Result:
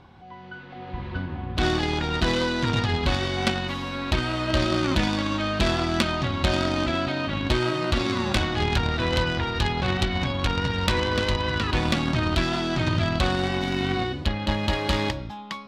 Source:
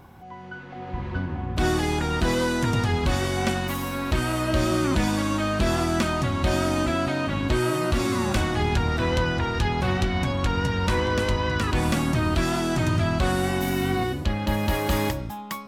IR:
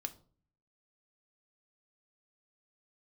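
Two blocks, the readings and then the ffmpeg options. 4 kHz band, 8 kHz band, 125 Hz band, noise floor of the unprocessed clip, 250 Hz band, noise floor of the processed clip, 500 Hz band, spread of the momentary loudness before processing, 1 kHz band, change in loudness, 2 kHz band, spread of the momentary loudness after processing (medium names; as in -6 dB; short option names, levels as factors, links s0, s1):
+4.5 dB, -5.0 dB, -1.5 dB, -38 dBFS, -1.5 dB, -40 dBFS, -1.0 dB, 5 LU, -0.5 dB, -0.5 dB, +1.0 dB, 6 LU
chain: -af "lowpass=f=4000:t=q:w=2,aeval=exprs='0.316*(cos(1*acos(clip(val(0)/0.316,-1,1)))-cos(1*PI/2))+0.1*(cos(3*acos(clip(val(0)/0.316,-1,1)))-cos(3*PI/2))+0.0178*(cos(5*acos(clip(val(0)/0.316,-1,1)))-cos(5*PI/2))':c=same,volume=2.24"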